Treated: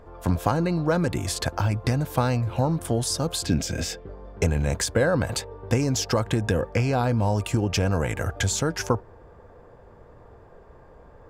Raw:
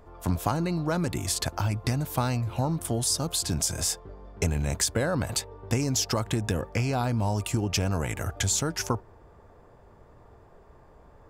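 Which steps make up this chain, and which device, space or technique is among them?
3.46–4.07 fifteen-band EQ 250 Hz +8 dB, 1000 Hz -10 dB, 2500 Hz +6 dB, 10000 Hz -12 dB; inside a helmet (high shelf 5300 Hz -8 dB; small resonant body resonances 500/1600 Hz, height 7 dB); gain +3.5 dB

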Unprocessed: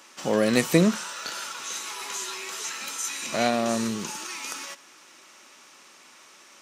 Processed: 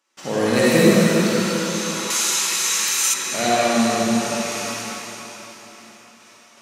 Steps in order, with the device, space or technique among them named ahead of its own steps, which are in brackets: gate with hold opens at -40 dBFS; cathedral (reverb RT60 4.0 s, pre-delay 44 ms, DRR -8.5 dB); 2.1–3.14 tilt +3 dB/oct; gain -1.5 dB

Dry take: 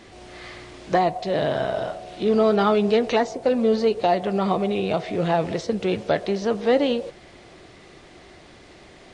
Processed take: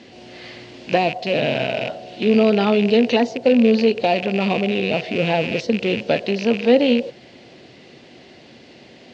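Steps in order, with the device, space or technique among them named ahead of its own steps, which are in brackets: car door speaker with a rattle (rattling part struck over -37 dBFS, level -19 dBFS; speaker cabinet 110–6800 Hz, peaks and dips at 130 Hz +6 dB, 240 Hz +10 dB, 510 Hz +5 dB, 1200 Hz -8 dB, 2800 Hz +7 dB, 4500 Hz +5 dB)

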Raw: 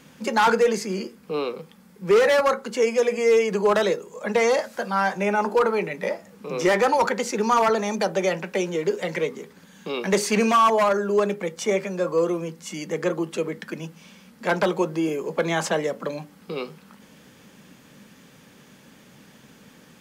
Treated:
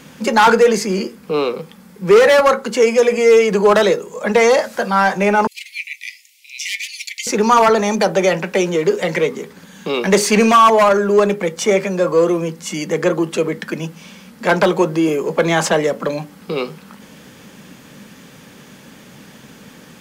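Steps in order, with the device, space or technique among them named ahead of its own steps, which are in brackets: parallel distortion (in parallel at -10 dB: hard clip -26.5 dBFS, distortion -5 dB); 5.47–7.27 on the sum: steep high-pass 2100 Hz 96 dB/oct; gain +7 dB

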